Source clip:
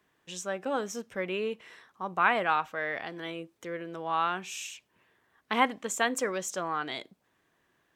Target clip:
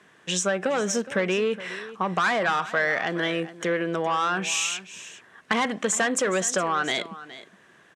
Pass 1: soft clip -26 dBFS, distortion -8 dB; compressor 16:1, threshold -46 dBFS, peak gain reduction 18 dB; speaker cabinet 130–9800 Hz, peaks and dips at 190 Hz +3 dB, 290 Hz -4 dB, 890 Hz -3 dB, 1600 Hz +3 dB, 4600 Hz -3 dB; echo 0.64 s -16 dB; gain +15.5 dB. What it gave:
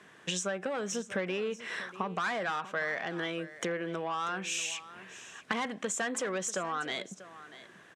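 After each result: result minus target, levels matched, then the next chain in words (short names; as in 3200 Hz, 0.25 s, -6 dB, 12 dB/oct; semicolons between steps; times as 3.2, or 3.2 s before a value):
echo 0.223 s late; compressor: peak gain reduction +9.5 dB
soft clip -26 dBFS, distortion -8 dB; compressor 16:1, threshold -46 dBFS, peak gain reduction 18 dB; speaker cabinet 130–9800 Hz, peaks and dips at 190 Hz +3 dB, 290 Hz -4 dB, 890 Hz -3 dB, 1600 Hz +3 dB, 4600 Hz -3 dB; echo 0.417 s -16 dB; gain +15.5 dB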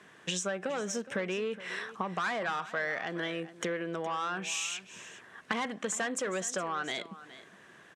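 compressor: peak gain reduction +9.5 dB
soft clip -26 dBFS, distortion -8 dB; compressor 16:1, threshold -36 dBFS, peak gain reduction 9 dB; speaker cabinet 130–9800 Hz, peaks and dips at 190 Hz +3 dB, 290 Hz -4 dB, 890 Hz -3 dB, 1600 Hz +3 dB, 4600 Hz -3 dB; echo 0.417 s -16 dB; gain +15.5 dB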